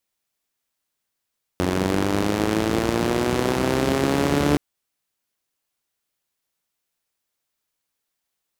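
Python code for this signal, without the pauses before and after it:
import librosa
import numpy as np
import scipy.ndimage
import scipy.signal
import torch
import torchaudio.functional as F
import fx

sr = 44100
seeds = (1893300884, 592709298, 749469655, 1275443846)

y = fx.engine_four_rev(sr, seeds[0], length_s=2.97, rpm=2700, resonances_hz=(84.0, 180.0, 300.0), end_rpm=4400)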